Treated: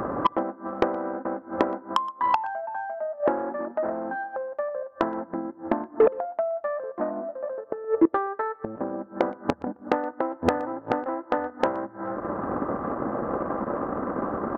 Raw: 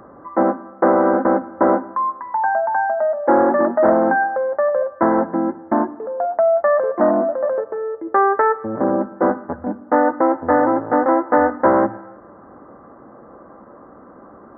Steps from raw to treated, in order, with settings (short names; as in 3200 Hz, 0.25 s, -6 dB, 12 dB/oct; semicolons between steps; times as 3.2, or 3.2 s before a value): in parallel at 0 dB: limiter -14.5 dBFS, peak gain reduction 11.5 dB; on the sum: transient shaper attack +8 dB, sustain -7 dB; flipped gate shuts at -12 dBFS, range -26 dB; soft clip -17.5 dBFS, distortion -9 dB; echo 0.121 s -23.5 dB; gain +7.5 dB